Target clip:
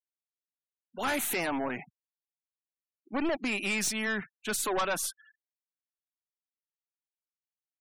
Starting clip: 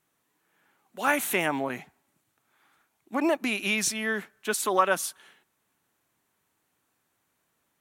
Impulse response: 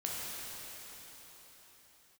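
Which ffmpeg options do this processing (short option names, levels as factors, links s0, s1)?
-filter_complex "[0:a]asplit=3[s0][s1][s2];[s0]afade=t=out:st=4.06:d=0.02[s3];[s1]asubboost=boost=9.5:cutoff=100,afade=t=in:st=4.06:d=0.02,afade=t=out:st=4.62:d=0.02[s4];[s2]afade=t=in:st=4.62:d=0.02[s5];[s3][s4][s5]amix=inputs=3:normalize=0,aeval=exprs='(tanh(25.1*val(0)+0.3)-tanh(0.3))/25.1':c=same,afftfilt=real='re*gte(hypot(re,im),0.00631)':imag='im*gte(hypot(re,im),0.00631)':win_size=1024:overlap=0.75,volume=1.26"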